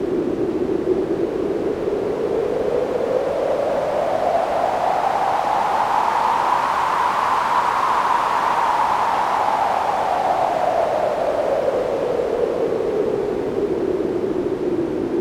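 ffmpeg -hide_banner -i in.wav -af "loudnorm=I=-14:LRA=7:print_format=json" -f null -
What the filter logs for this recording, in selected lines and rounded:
"input_i" : "-20.1",
"input_tp" : "-5.9",
"input_lra" : "3.0",
"input_thresh" : "-30.1",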